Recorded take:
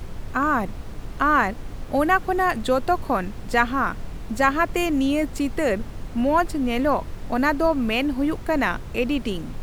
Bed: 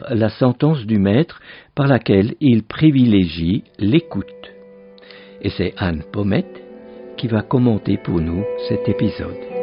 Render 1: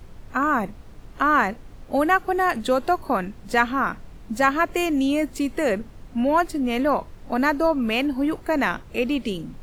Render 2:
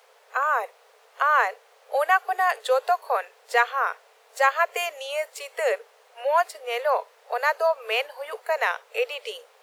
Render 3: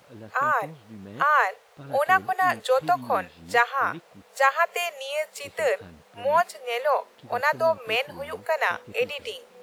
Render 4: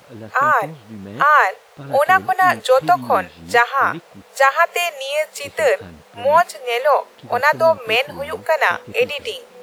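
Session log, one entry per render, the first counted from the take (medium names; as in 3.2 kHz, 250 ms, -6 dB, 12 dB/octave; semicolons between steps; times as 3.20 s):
noise print and reduce 9 dB
Chebyshev high-pass 430 Hz, order 8
add bed -27 dB
trim +8 dB; peak limiter -2 dBFS, peak gain reduction 3 dB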